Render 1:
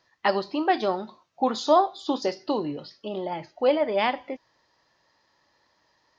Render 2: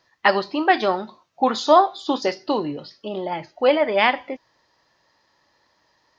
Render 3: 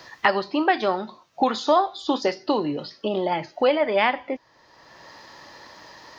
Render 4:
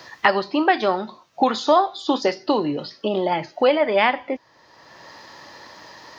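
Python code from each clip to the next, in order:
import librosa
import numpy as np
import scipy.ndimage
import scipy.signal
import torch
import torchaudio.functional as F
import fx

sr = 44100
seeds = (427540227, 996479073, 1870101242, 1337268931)

y1 = fx.dynamic_eq(x, sr, hz=1900.0, q=0.75, threshold_db=-38.0, ratio=4.0, max_db=7)
y1 = y1 * librosa.db_to_amplitude(3.0)
y2 = fx.band_squash(y1, sr, depth_pct=70)
y2 = y2 * librosa.db_to_amplitude(-2.0)
y3 = scipy.signal.sosfilt(scipy.signal.butter(2, 64.0, 'highpass', fs=sr, output='sos'), y2)
y3 = y3 * librosa.db_to_amplitude(2.5)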